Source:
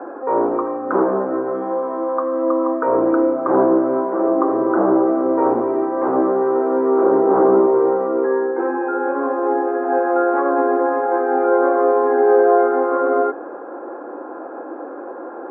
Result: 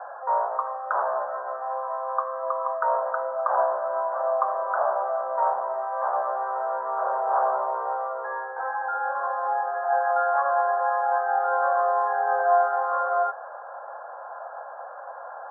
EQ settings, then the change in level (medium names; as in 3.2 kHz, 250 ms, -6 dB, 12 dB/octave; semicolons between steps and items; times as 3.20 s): elliptic band-pass 620–1700 Hz, stop band 40 dB; -1.5 dB